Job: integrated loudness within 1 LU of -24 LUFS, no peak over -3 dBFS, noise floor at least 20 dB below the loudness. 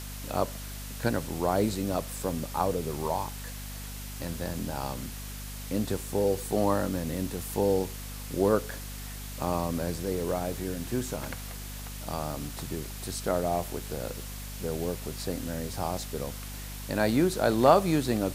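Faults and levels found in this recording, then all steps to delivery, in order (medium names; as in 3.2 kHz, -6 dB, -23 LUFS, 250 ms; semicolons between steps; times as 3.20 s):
hum 50 Hz; highest harmonic 250 Hz; hum level -38 dBFS; noise floor -39 dBFS; noise floor target -51 dBFS; loudness -30.5 LUFS; peak level -5.0 dBFS; loudness target -24.0 LUFS
-> de-hum 50 Hz, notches 5; noise reduction 12 dB, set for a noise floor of -39 dBFS; trim +6.5 dB; peak limiter -3 dBFS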